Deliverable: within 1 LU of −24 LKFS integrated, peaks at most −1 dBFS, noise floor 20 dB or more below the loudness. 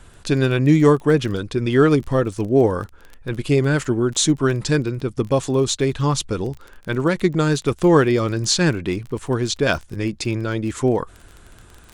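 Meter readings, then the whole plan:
crackle rate 22 per second; integrated loudness −19.5 LKFS; sample peak −1.5 dBFS; target loudness −24.0 LKFS
→ click removal
level −4.5 dB

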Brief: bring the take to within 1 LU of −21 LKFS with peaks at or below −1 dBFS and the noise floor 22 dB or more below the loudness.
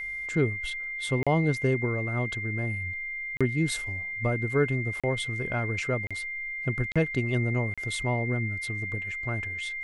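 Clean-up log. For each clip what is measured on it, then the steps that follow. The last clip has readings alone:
number of dropouts 6; longest dropout 36 ms; interfering tone 2,100 Hz; level of the tone −32 dBFS; integrated loudness −28.5 LKFS; sample peak −13.0 dBFS; target loudness −21.0 LKFS
→ repair the gap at 0:01.23/0:03.37/0:05.00/0:06.07/0:06.92/0:07.74, 36 ms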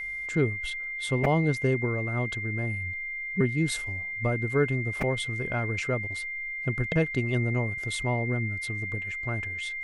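number of dropouts 0; interfering tone 2,100 Hz; level of the tone −32 dBFS
→ notch filter 2,100 Hz, Q 30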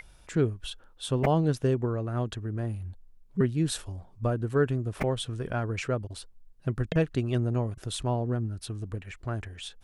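interfering tone none found; integrated loudness −30.0 LKFS; sample peak −12.5 dBFS; target loudness −21.0 LKFS
→ level +9 dB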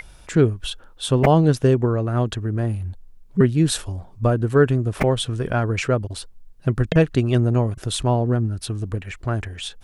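integrated loudness −21.0 LKFS; sample peak −3.5 dBFS; background noise floor −46 dBFS

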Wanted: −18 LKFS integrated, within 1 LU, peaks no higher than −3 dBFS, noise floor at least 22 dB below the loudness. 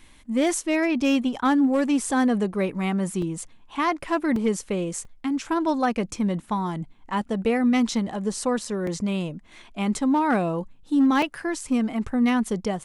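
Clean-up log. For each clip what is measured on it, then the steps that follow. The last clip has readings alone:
share of clipped samples 0.4%; peaks flattened at −14.0 dBFS; number of dropouts 5; longest dropout 3.1 ms; integrated loudness −24.5 LKFS; sample peak −14.0 dBFS; target loudness −18.0 LKFS
→ clipped peaks rebuilt −14 dBFS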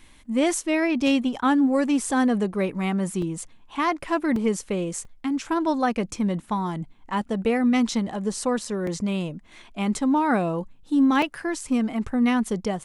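share of clipped samples 0.0%; number of dropouts 5; longest dropout 3.1 ms
→ repair the gap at 0:03.22/0:04.36/0:05.05/0:08.87/0:11.22, 3.1 ms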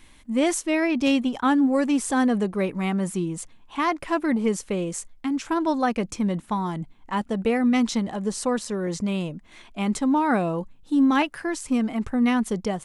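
number of dropouts 0; integrated loudness −24.5 LKFS; sample peak −8.5 dBFS; target loudness −18.0 LKFS
→ level +6.5 dB
brickwall limiter −3 dBFS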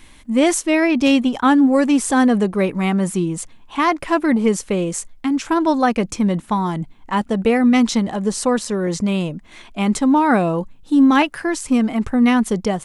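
integrated loudness −18.0 LKFS; sample peak −3.0 dBFS; background noise floor −46 dBFS

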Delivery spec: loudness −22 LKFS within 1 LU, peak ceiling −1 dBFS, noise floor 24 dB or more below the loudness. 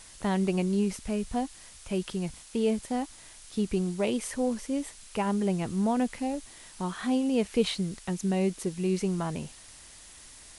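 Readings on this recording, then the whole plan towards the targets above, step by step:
background noise floor −50 dBFS; target noise floor −54 dBFS; integrated loudness −30.0 LKFS; sample peak −12.5 dBFS; target loudness −22.0 LKFS
→ broadband denoise 6 dB, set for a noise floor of −50 dBFS
level +8 dB

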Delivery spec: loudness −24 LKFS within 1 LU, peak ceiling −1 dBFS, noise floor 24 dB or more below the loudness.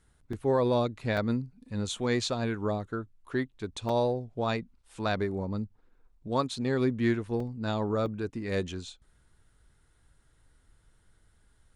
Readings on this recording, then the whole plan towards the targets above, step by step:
number of dropouts 5; longest dropout 3.2 ms; integrated loudness −31.0 LKFS; sample peak −15.0 dBFS; target loudness −24.0 LKFS
→ repair the gap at 0:00.33/0:01.17/0:03.89/0:07.40/0:08.06, 3.2 ms
level +7 dB

